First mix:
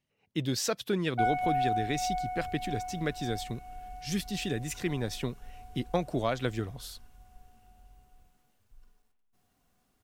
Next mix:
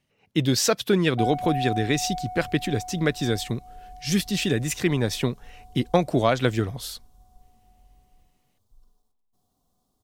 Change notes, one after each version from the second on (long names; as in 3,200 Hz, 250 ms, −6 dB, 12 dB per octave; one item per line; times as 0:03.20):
speech +9.0 dB
background: add flat-topped bell 2,000 Hz −15 dB 1.2 octaves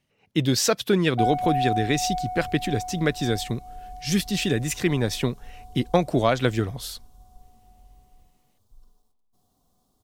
background +4.0 dB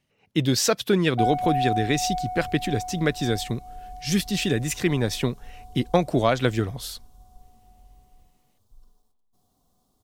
nothing changed